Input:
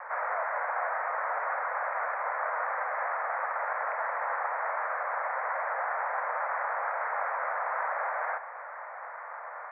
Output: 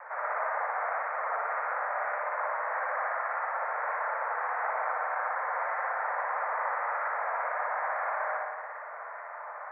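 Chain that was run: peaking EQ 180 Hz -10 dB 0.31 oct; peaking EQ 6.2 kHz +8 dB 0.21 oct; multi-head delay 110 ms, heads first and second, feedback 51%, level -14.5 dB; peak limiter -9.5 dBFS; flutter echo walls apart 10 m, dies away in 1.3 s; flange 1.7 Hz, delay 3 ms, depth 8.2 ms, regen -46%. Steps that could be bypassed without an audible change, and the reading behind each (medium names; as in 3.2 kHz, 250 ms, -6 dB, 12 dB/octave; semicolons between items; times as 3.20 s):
peaking EQ 180 Hz: input has nothing below 400 Hz; peaking EQ 6.2 kHz: input has nothing above 2.6 kHz; peak limiter -9.5 dBFS: peak at its input -18.5 dBFS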